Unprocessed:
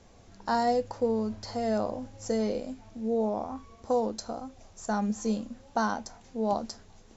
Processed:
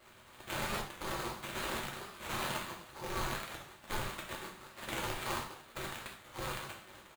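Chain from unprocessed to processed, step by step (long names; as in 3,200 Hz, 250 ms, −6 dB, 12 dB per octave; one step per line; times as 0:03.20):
samples sorted by size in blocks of 8 samples
dynamic equaliser 260 Hz, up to −5 dB, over −42 dBFS, Q 0.75
brickwall limiter −25.5 dBFS, peak gain reduction 9.5 dB
on a send: single-tap delay 999 ms −20.5 dB
on the sum: gate on every frequency bin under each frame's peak −30 dB weak
spectral tilt −2 dB per octave
phaser with its sweep stopped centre 420 Hz, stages 8
sample-rate reduction 5,600 Hz, jitter 20%
reverb whose tail is shaped and stops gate 150 ms falling, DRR 0.5 dB
wow of a warped record 45 rpm, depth 100 cents
level +18 dB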